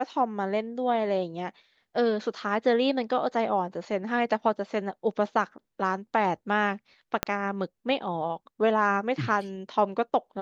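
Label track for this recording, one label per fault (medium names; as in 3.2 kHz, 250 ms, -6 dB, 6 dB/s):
7.230000	7.230000	pop -8 dBFS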